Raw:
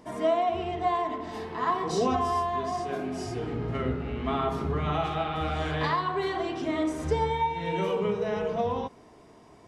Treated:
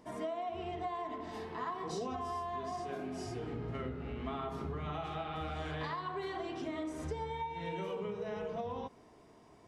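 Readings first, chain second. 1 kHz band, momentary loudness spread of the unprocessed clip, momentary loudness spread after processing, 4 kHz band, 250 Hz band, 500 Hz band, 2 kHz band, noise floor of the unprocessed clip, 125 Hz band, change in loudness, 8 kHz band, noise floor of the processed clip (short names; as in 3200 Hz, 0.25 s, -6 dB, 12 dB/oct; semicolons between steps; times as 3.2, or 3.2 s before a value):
-11.5 dB, 6 LU, 3 LU, -10.5 dB, -10.0 dB, -11.0 dB, -10.5 dB, -53 dBFS, -10.0 dB, -11.0 dB, -9.5 dB, -60 dBFS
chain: compressor, threshold -29 dBFS, peak gain reduction 9 dB; gain -6.5 dB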